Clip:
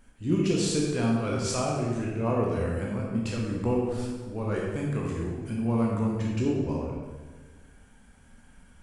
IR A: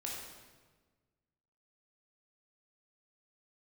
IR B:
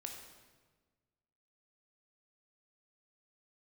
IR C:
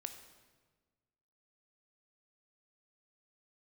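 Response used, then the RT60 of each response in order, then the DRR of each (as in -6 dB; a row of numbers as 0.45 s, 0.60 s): A; 1.4 s, 1.4 s, 1.4 s; -3.5 dB, 2.0 dB, 7.0 dB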